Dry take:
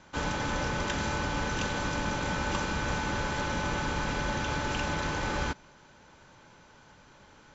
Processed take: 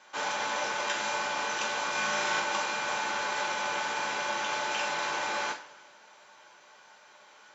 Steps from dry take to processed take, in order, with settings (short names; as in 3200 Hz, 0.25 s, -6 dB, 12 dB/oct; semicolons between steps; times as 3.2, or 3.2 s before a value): HPF 610 Hz 12 dB/oct; 1.91–2.4 flutter echo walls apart 6.4 m, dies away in 0.99 s; two-slope reverb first 0.32 s, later 1.7 s, from -20 dB, DRR 0 dB